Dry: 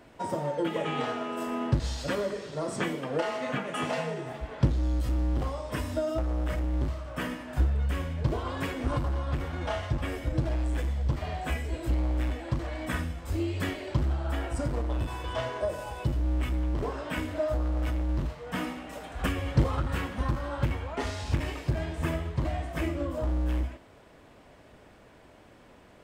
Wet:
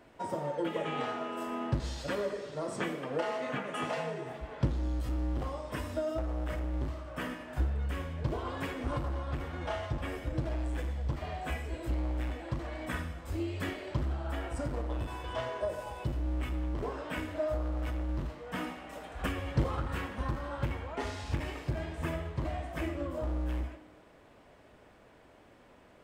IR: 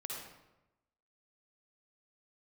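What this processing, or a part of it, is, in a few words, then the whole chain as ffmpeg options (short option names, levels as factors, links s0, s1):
filtered reverb send: -filter_complex "[0:a]asplit=2[s0][s1];[s1]highpass=220,lowpass=3700[s2];[1:a]atrim=start_sample=2205[s3];[s2][s3]afir=irnorm=-1:irlink=0,volume=0.447[s4];[s0][s4]amix=inputs=2:normalize=0,volume=0.531"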